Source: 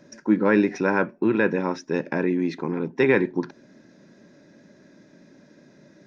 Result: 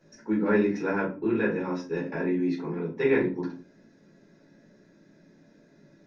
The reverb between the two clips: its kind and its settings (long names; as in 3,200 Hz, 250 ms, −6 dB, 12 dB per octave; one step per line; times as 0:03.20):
rectangular room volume 160 cubic metres, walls furnished, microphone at 4.1 metres
level −14.5 dB